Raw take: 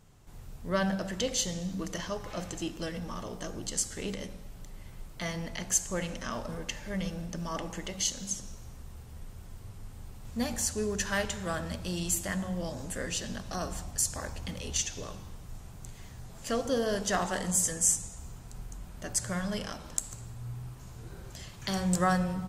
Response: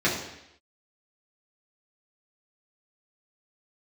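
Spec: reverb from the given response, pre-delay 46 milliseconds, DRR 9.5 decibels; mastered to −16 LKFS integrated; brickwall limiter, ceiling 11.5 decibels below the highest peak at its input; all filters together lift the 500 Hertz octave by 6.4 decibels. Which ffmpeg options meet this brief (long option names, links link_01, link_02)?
-filter_complex "[0:a]equalizer=frequency=500:width_type=o:gain=7.5,alimiter=limit=-19dB:level=0:latency=1,asplit=2[link_01][link_02];[1:a]atrim=start_sample=2205,adelay=46[link_03];[link_02][link_03]afir=irnorm=-1:irlink=0,volume=-24.5dB[link_04];[link_01][link_04]amix=inputs=2:normalize=0,volume=15dB"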